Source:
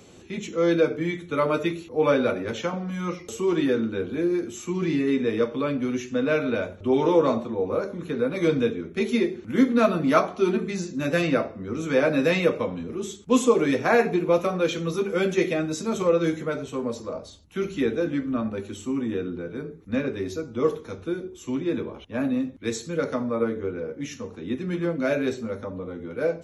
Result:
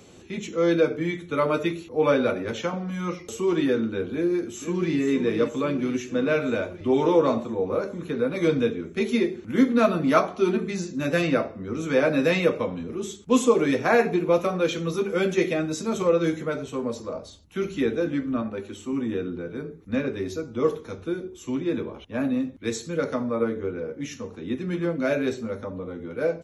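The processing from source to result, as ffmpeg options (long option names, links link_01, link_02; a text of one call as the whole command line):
ffmpeg -i in.wav -filter_complex "[0:a]asplit=2[link_01][link_02];[link_02]afade=type=in:start_time=4.13:duration=0.01,afade=type=out:start_time=5:duration=0.01,aecho=0:1:480|960|1440|1920|2400|2880|3360|3840|4320|4800|5280:0.354813|0.248369|0.173859|0.121701|0.0851907|0.0596335|0.0417434|0.0292204|0.0204543|0.014318|0.0100226[link_03];[link_01][link_03]amix=inputs=2:normalize=0,asettb=1/sr,asplit=3[link_04][link_05][link_06];[link_04]atrim=end=18.424[link_07];[link_05]atrim=start=18.42:end=18.93,asetpts=PTS-STARTPTS,afade=type=in:duration=0.004:curve=qsin,afade=type=out:start_time=0.506:duration=0.004:curve=qsin,bass=frequency=250:gain=-5,treble=frequency=4000:gain=-4[link_08];[link_06]atrim=start=18.926[link_09];[link_07][link_08]acrossfade=duration=0.004:curve1=hsin:curve2=qsin[link_10];[link_10][link_09]acrossfade=duration=0.004:curve1=qsin:curve2=hsin" out.wav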